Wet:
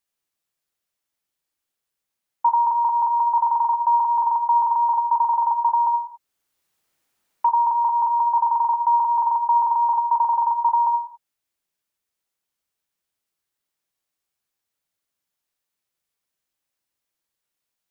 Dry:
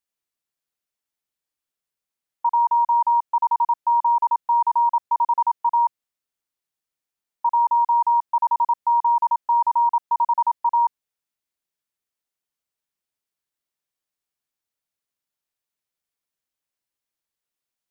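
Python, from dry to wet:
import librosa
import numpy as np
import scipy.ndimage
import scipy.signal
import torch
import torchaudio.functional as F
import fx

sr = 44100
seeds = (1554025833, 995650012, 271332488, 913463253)

y = fx.rev_gated(x, sr, seeds[0], gate_ms=310, shape='falling', drr_db=7.0)
y = fx.band_squash(y, sr, depth_pct=40, at=(5.51, 7.49))
y = y * 10.0 ** (3.5 / 20.0)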